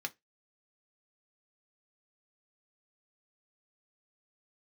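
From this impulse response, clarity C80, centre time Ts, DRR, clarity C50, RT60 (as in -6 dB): 36.5 dB, 3 ms, 4.5 dB, 25.5 dB, 0.15 s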